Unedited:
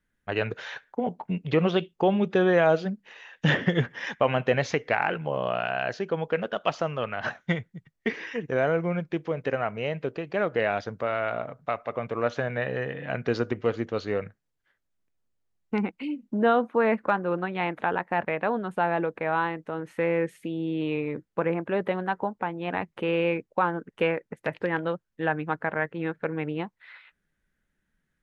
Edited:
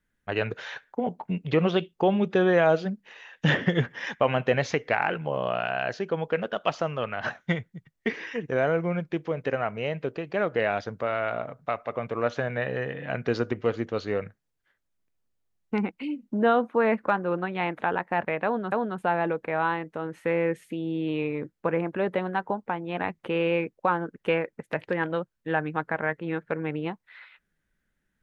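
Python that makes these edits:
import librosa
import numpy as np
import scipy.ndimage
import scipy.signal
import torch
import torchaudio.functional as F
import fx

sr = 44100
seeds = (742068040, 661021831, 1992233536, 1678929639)

y = fx.edit(x, sr, fx.repeat(start_s=18.45, length_s=0.27, count=2), tone=tone)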